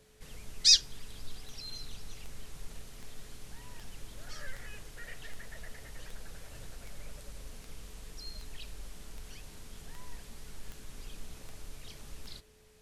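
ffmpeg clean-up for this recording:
-af "adeclick=t=4,bandreject=f=430:w=30"

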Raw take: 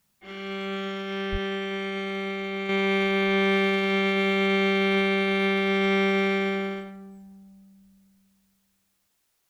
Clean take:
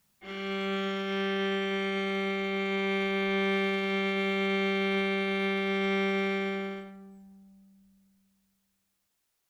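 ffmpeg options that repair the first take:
-filter_complex "[0:a]asplit=3[a][b][c];[a]afade=t=out:st=1.31:d=0.02[d];[b]highpass=f=140:w=0.5412,highpass=f=140:w=1.3066,afade=t=in:st=1.31:d=0.02,afade=t=out:st=1.43:d=0.02[e];[c]afade=t=in:st=1.43:d=0.02[f];[d][e][f]amix=inputs=3:normalize=0,asetnsamples=n=441:p=0,asendcmd='2.69 volume volume -5.5dB',volume=0dB"

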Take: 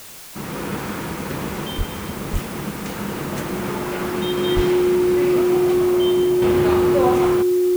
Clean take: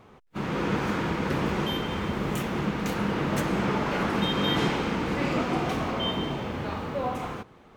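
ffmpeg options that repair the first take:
-filter_complex "[0:a]bandreject=f=360:w=30,asplit=3[a][b][c];[a]afade=t=out:st=1.77:d=0.02[d];[b]highpass=f=140:w=0.5412,highpass=f=140:w=1.3066,afade=t=in:st=1.77:d=0.02,afade=t=out:st=1.89:d=0.02[e];[c]afade=t=in:st=1.89:d=0.02[f];[d][e][f]amix=inputs=3:normalize=0,asplit=3[g][h][i];[g]afade=t=out:st=2.32:d=0.02[j];[h]highpass=f=140:w=0.5412,highpass=f=140:w=1.3066,afade=t=in:st=2.32:d=0.02,afade=t=out:st=2.44:d=0.02[k];[i]afade=t=in:st=2.44:d=0.02[l];[j][k][l]amix=inputs=3:normalize=0,asplit=3[m][n][o];[m]afade=t=out:st=4.55:d=0.02[p];[n]highpass=f=140:w=0.5412,highpass=f=140:w=1.3066,afade=t=in:st=4.55:d=0.02,afade=t=out:st=4.67:d=0.02[q];[o]afade=t=in:st=4.67:d=0.02[r];[p][q][r]amix=inputs=3:normalize=0,afwtdn=0.011,asetnsamples=n=441:p=0,asendcmd='6.42 volume volume -9.5dB',volume=0dB"

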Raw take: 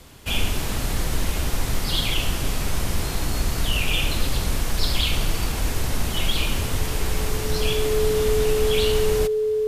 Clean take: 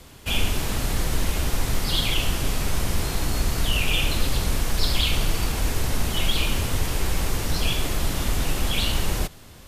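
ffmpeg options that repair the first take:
-af "bandreject=f=430:w=30"

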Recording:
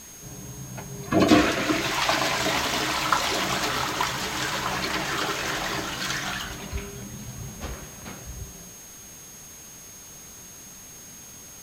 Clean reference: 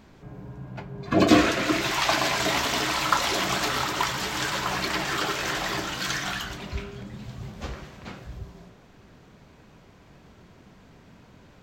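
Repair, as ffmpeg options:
-af "bandreject=f=6.5k:w=30,afwtdn=0.0045"

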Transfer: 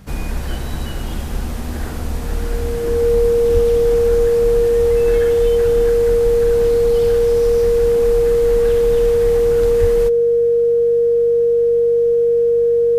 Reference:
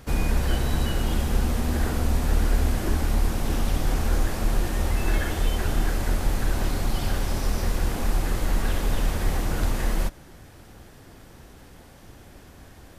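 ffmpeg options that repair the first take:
-filter_complex "[0:a]bandreject=f=48.5:t=h:w=4,bandreject=f=97:t=h:w=4,bandreject=f=145.5:t=h:w=4,bandreject=f=194:t=h:w=4,bandreject=f=470:w=30,asplit=3[a][b][c];[a]afade=t=out:st=3.53:d=0.02[d];[b]highpass=f=140:w=0.5412,highpass=f=140:w=1.3066,afade=t=in:st=3.53:d=0.02,afade=t=out:st=3.65:d=0.02[e];[c]afade=t=in:st=3.65:d=0.02[f];[d][e][f]amix=inputs=3:normalize=0,asplit=3[g][h][i];[g]afade=t=out:st=9.8:d=0.02[j];[h]highpass=f=140:w=0.5412,highpass=f=140:w=1.3066,afade=t=in:st=9.8:d=0.02,afade=t=out:st=9.92:d=0.02[k];[i]afade=t=in:st=9.92:d=0.02[l];[j][k][l]amix=inputs=3:normalize=0"

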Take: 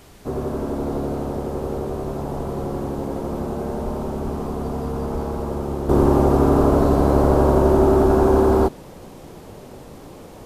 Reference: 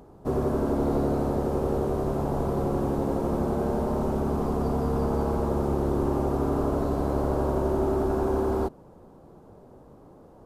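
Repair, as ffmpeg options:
-filter_complex "[0:a]asplit=3[a][b][c];[a]afade=t=out:st=3.84:d=0.02[d];[b]highpass=f=140:w=0.5412,highpass=f=140:w=1.3066,afade=t=in:st=3.84:d=0.02,afade=t=out:st=3.96:d=0.02[e];[c]afade=t=in:st=3.96:d=0.02[f];[d][e][f]amix=inputs=3:normalize=0,asplit=3[g][h][i];[g]afade=t=out:st=4.23:d=0.02[j];[h]highpass=f=140:w=0.5412,highpass=f=140:w=1.3066,afade=t=in:st=4.23:d=0.02,afade=t=out:st=4.35:d=0.02[k];[i]afade=t=in:st=4.35:d=0.02[l];[j][k][l]amix=inputs=3:normalize=0,asplit=3[m][n][o];[m]afade=t=out:st=5.12:d=0.02[p];[n]highpass=f=140:w=0.5412,highpass=f=140:w=1.3066,afade=t=in:st=5.12:d=0.02,afade=t=out:st=5.24:d=0.02[q];[o]afade=t=in:st=5.24:d=0.02[r];[p][q][r]amix=inputs=3:normalize=0,agate=range=-21dB:threshold=-32dB,asetnsamples=n=441:p=0,asendcmd='5.89 volume volume -10dB',volume=0dB"

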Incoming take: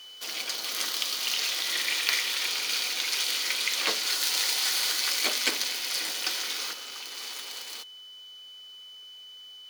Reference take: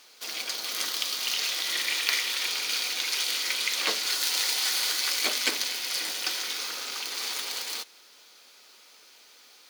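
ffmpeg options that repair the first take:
-af "bandreject=f=3k:w=30,asetnsamples=n=441:p=0,asendcmd='6.73 volume volume 6dB',volume=0dB"

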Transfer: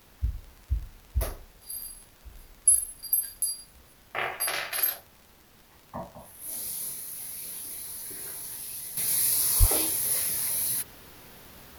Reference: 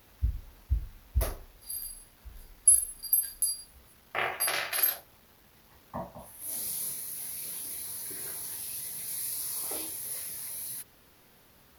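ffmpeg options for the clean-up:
-filter_complex "[0:a]adeclick=t=4,asplit=3[a][b][c];[a]afade=t=out:st=9.59:d=0.02[d];[b]highpass=f=140:w=0.5412,highpass=f=140:w=1.3066,afade=t=in:st=9.59:d=0.02,afade=t=out:st=9.71:d=0.02[e];[c]afade=t=in:st=9.71:d=0.02[f];[d][e][f]amix=inputs=3:normalize=0,agate=range=-21dB:threshold=-48dB,asetnsamples=n=441:p=0,asendcmd='8.97 volume volume -10dB',volume=0dB"

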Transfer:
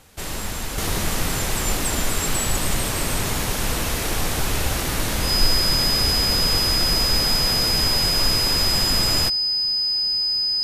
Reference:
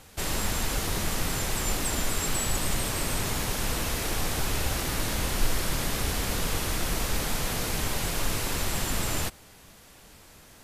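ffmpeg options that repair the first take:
-af "bandreject=f=5k:w=30,asetnsamples=n=441:p=0,asendcmd='0.78 volume volume -5.5dB',volume=0dB"

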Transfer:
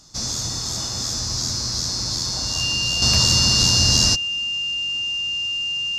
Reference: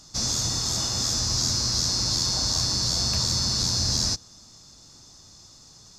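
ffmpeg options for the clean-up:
-af "bandreject=f=2.8k:w=30,asetnsamples=n=441:p=0,asendcmd='3.02 volume volume -7.5dB',volume=0dB"

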